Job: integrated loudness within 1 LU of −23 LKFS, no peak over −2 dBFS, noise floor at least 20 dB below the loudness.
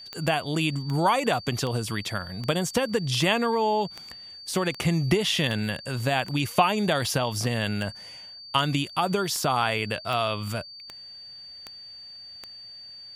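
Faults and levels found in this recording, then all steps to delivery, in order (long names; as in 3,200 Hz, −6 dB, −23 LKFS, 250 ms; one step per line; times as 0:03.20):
number of clicks 17; interfering tone 4,600 Hz; level of the tone −41 dBFS; integrated loudness −26.0 LKFS; sample peak −7.0 dBFS; target loudness −23.0 LKFS
→ click removal
notch filter 4,600 Hz, Q 30
level +3 dB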